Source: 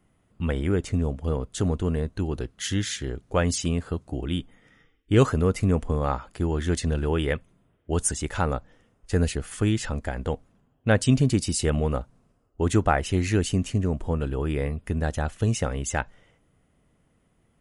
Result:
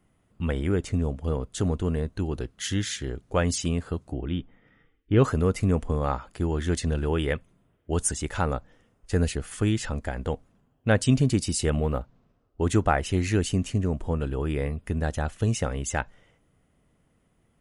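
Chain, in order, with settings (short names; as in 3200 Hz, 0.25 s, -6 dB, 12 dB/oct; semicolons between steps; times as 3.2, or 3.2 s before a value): 4.13–5.24 air absorption 300 m; 11.76–12.61 decimation joined by straight lines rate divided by 4×; gain -1 dB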